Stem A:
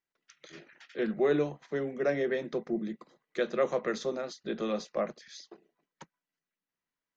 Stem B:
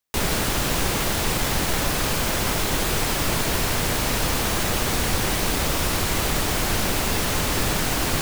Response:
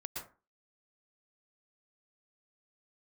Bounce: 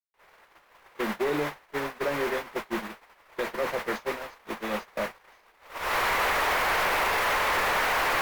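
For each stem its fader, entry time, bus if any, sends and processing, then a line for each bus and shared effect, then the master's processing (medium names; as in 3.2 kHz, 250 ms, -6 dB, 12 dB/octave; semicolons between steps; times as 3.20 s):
+0.5 dB, 0.00 s, no send, none
5.61 s -18 dB -> 6.21 s -7 dB, 0.00 s, no send, ten-band graphic EQ 125 Hz -6 dB, 250 Hz -6 dB, 500 Hz +7 dB, 1 kHz +9 dB, 2 kHz +9 dB, 8 kHz -4 dB, 16 kHz +9 dB; overdrive pedal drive 16 dB, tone 2.5 kHz, clips at -4 dBFS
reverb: none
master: gate -28 dBFS, range -39 dB; peak limiter -18.5 dBFS, peak gain reduction 6 dB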